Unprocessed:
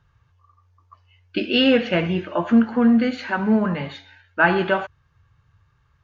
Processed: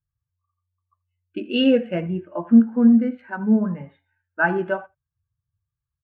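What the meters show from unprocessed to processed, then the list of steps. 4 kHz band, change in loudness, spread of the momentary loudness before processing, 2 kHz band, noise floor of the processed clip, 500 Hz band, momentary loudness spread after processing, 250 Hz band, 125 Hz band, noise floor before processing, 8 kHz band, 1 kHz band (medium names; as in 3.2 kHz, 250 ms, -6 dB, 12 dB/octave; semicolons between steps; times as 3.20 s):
-6.5 dB, 0.0 dB, 13 LU, -4.5 dB, under -85 dBFS, -2.5 dB, 16 LU, +1.0 dB, -2.0 dB, -63 dBFS, no reading, -5.5 dB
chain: local Wiener filter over 9 samples; on a send: delay 80 ms -18 dB; on the sum: spectral contrast expander 1.5:1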